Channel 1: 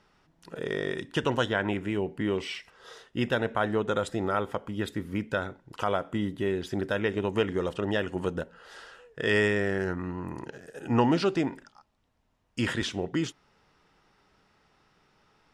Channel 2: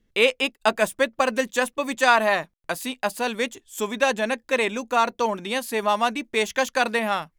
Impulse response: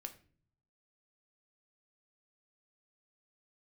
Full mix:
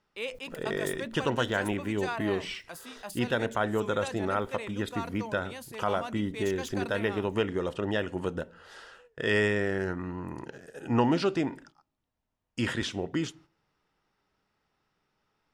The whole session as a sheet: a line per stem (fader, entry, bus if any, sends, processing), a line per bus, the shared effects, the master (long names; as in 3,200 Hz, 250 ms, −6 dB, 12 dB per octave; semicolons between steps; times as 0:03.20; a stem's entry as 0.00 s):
−3.0 dB, 0.00 s, send −8.5 dB, no processing
−17.5 dB, 0.00 s, no send, level that may fall only so fast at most 91 dB per second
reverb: on, pre-delay 3 ms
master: noise gate −53 dBFS, range −10 dB